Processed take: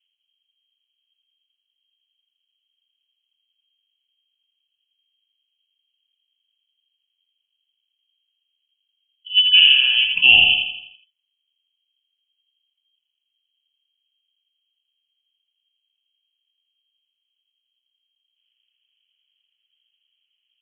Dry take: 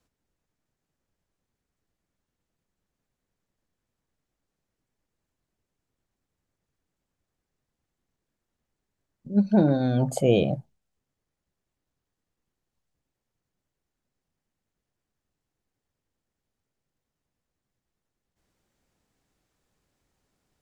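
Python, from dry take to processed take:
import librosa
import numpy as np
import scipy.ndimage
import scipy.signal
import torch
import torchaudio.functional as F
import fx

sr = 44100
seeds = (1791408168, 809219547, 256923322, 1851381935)

p1 = fx.env_lowpass(x, sr, base_hz=550.0, full_db=-24.0)
p2 = fx.dynamic_eq(p1, sr, hz=440.0, q=1.1, threshold_db=-32.0, ratio=4.0, max_db=6)
p3 = p2 + fx.echo_feedback(p2, sr, ms=83, feedback_pct=47, wet_db=-4.0, dry=0)
p4 = fx.freq_invert(p3, sr, carrier_hz=3200)
y = p4 * librosa.db_to_amplitude(3.0)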